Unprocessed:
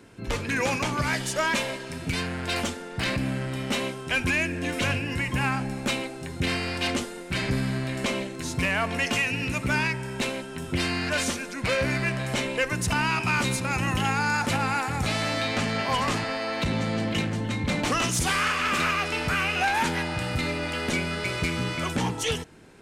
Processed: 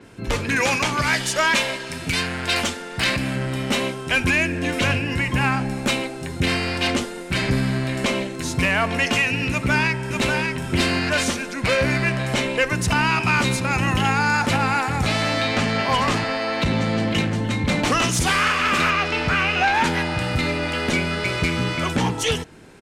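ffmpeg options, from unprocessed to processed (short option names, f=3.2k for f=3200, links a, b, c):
-filter_complex "[0:a]asettb=1/sr,asplit=3[a][b][c];[a]atrim=end=0.564[d];[b]atrim=start=0.56:end=3.36,asetpts=PTS-STARTPTS,afade=t=in:d=0.004:c=qsin,afade=t=out:st=2.796:d=0.004:c=qsin,tiltshelf=f=970:g=-3.5[e];[c]atrim=start=3.356[f];[d][e]acrossfade=d=0.004:c1=hsin:c2=qsin[g];[g][f]acrossfade=d=0.004:c1=qsin:c2=hsin,asplit=2[h][i];[i]afade=t=in:st=9.51:d=0.01,afade=t=out:st=10.4:d=0.01,aecho=0:1:590|1180|1770:0.630957|0.0946436|0.0141965[j];[h][j]amix=inputs=2:normalize=0,asettb=1/sr,asplit=3[k][l][m];[k]atrim=end=18.904[n];[l]atrim=start=18.9:end=19.84,asetpts=PTS-STARTPTS,afade=t=in:d=0.004:c=qsin,afade=t=out:st=0.936:d=0.004:c=qsin,acrossover=split=7000[o][p];[p]acompressor=threshold=-58dB:ratio=4:attack=1:release=60[q];[o][q]amix=inputs=2:normalize=0[r];[m]atrim=start=19.836[s];[n][r]acrossfade=d=0.004:c1=hsin:c2=qsin[t];[t][s]acrossfade=d=0.004:c1=qsin:c2=hsin,adynamicequalizer=threshold=0.00708:dfrequency=6500:dqfactor=0.7:tfrequency=6500:tqfactor=0.7:attack=5:release=100:ratio=0.375:range=2.5:mode=cutabove:tftype=highshelf,volume=5.5dB"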